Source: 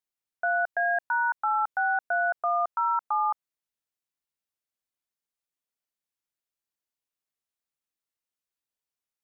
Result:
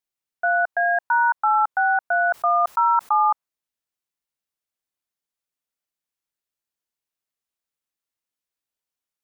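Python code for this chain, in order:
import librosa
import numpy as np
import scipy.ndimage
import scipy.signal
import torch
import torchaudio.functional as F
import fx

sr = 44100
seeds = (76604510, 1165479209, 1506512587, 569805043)

y = fx.dynamic_eq(x, sr, hz=1000.0, q=1.1, threshold_db=-39.0, ratio=4.0, max_db=7)
y = fx.sustainer(y, sr, db_per_s=50.0, at=(2.04, 3.23))
y = y * librosa.db_to_amplitude(1.5)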